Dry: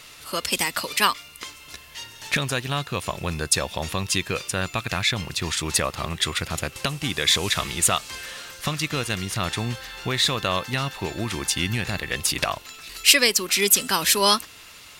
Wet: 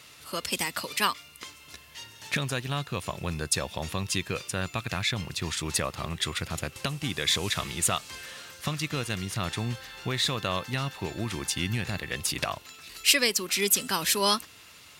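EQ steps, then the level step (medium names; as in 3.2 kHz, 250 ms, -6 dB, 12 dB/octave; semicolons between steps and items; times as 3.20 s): high-pass 77 Hz; bass shelf 220 Hz +5 dB; -6.0 dB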